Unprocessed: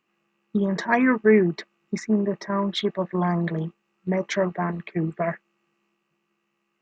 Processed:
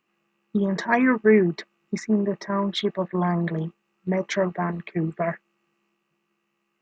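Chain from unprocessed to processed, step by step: 3.08–3.52 bell 5800 Hz -15 dB 0.38 oct

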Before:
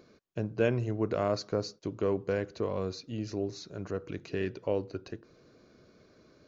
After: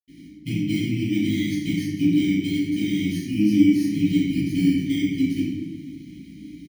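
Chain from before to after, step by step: FFT order left unsorted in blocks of 16 samples; elliptic band-stop 310–2300 Hz, stop band 40 dB; resonant high shelf 1600 Hz +9 dB, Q 3; compressor 10:1, threshold -32 dBFS, peak gain reduction 14 dB; small resonant body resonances 290/790/1900 Hz, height 15 dB, ringing for 50 ms; varispeed -3%; chorus 2 Hz, delay 17 ms, depth 3.2 ms; speakerphone echo 0.23 s, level -17 dB; reverb RT60 1.2 s, pre-delay 77 ms

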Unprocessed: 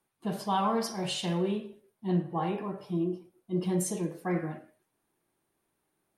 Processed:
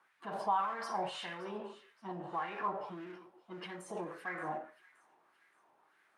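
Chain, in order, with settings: G.711 law mismatch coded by mu; dynamic EQ 9200 Hz, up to +7 dB, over -57 dBFS, Q 2.6; limiter -27 dBFS, peak gain reduction 10.5 dB; LFO band-pass sine 1.7 Hz 820–1800 Hz; on a send: thin delay 0.573 s, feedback 43%, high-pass 2400 Hz, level -17 dB; on the sum: gain +8 dB

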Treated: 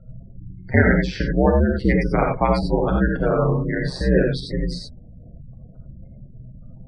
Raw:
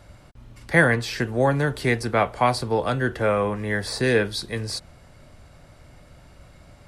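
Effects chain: ring modulator 67 Hz; low shelf 290 Hz +10.5 dB; spectral gate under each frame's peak -20 dB strong; air absorption 62 m; non-linear reverb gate 0.11 s rising, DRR 1 dB

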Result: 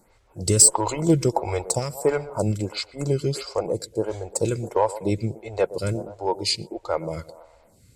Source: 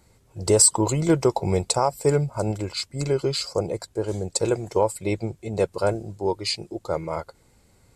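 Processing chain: bell 380 Hz -3.5 dB 0.44 oct; in parallel at -4 dB: one-sided clip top -15 dBFS; on the sum: narrowing echo 0.121 s, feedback 50%, band-pass 630 Hz, level -15 dB; photocell phaser 1.5 Hz

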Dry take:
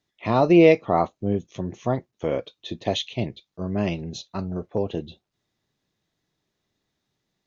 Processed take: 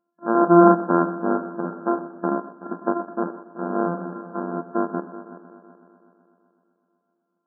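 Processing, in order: sample sorter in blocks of 128 samples; multi-head echo 0.126 s, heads first and third, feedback 55%, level -15.5 dB; FFT band-pass 170–1700 Hz; gain +2.5 dB

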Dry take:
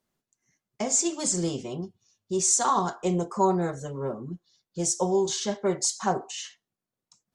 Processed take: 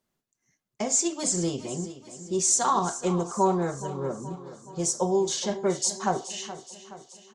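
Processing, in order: feedback echo 0.423 s, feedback 56%, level -14.5 dB; ending taper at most 290 dB/s

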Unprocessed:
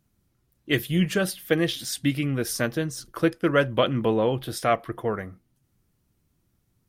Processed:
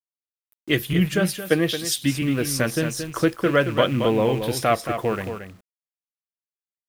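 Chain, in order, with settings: rattling part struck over -35 dBFS, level -31 dBFS; in parallel at +1 dB: compressor 6:1, threshold -32 dBFS, peak gain reduction 16 dB; on the sum: vibrato 1.8 Hz 26 cents; bit-crush 8-bit; on a send: echo 0.225 s -8 dB; 0.93–2.22 on the sum: three-band expander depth 70%

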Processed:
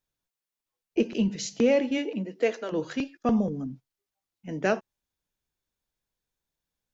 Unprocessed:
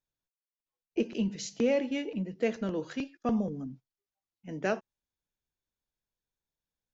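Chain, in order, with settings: 1.97–2.71 HPF 140 Hz -> 420 Hz 24 dB/oct; gain +5 dB

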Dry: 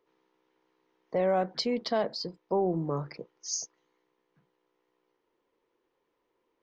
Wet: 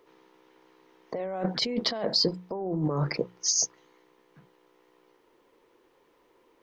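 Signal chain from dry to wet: notches 60/120/180 Hz; negative-ratio compressor -36 dBFS, ratio -1; gain +7.5 dB

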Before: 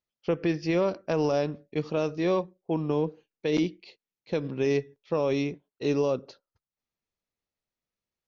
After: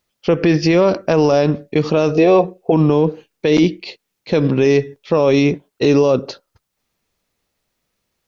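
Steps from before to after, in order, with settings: 2.15–2.72 small resonant body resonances 470/690/2600 Hz, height 16 dB, ringing for 45 ms; maximiser +22 dB; gain -3.5 dB

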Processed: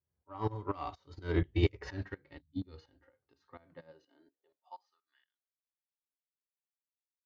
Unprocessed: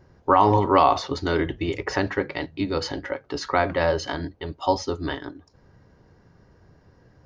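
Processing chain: Doppler pass-by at 1.77, 13 m/s, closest 5.9 m; spectral gain 2.41–2.65, 280–3000 Hz -29 dB; dynamic EQ 710 Hz, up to -5 dB, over -35 dBFS, Q 0.72; harmonic-percussive split percussive -12 dB; high-pass sweep 61 Hz -> 2800 Hz, 3.22–5.4; soft clip -20 dBFS, distortion -20 dB; tremolo saw up 4.2 Hz, depth 75%; upward expander 2.5:1, over -45 dBFS; gain +7.5 dB

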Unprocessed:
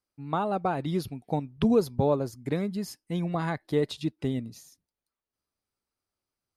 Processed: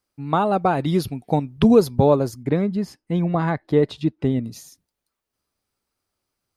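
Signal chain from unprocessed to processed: 2.43–4.44 LPF 1700 Hz 6 dB/oct; gain +8.5 dB

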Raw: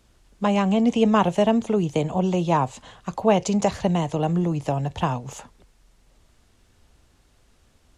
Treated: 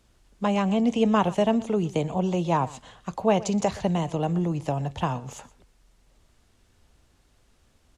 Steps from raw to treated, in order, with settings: echo 0.121 s -19.5 dB; gain -3 dB

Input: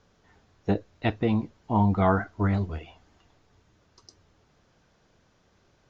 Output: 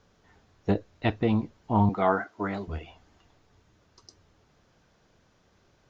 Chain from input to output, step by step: 1.89–2.68 HPF 280 Hz 12 dB/oct; Doppler distortion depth 0.11 ms

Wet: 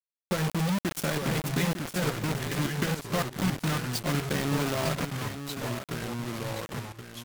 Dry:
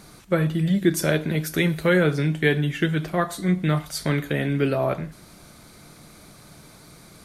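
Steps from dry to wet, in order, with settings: low-pass opened by the level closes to 1800 Hz, open at -20.5 dBFS; bell 200 Hz +10.5 dB 0.35 oct; comb 7.4 ms, depth 37%; dynamic EQ 1200 Hz, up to +4 dB, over -33 dBFS, Q 0.96; compressor 16:1, threshold -26 dBFS, peak gain reduction 15.5 dB; 1.68–4.07 chopper 3.6 Hz, depth 65%, duty 55%; bit-crush 5-bit; echo 0.903 s -9.5 dB; echoes that change speed 0.79 s, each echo -3 st, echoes 2, each echo -6 dB

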